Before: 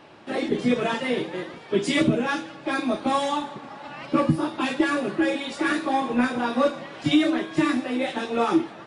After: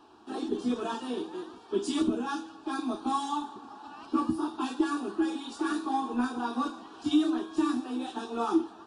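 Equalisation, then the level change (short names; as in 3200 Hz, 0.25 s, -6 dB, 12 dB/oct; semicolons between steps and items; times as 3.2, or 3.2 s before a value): fixed phaser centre 560 Hz, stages 6; -4.5 dB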